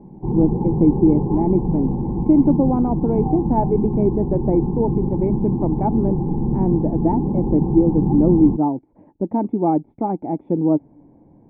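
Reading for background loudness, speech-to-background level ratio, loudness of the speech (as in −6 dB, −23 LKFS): −22.5 LKFS, 2.0 dB, −20.5 LKFS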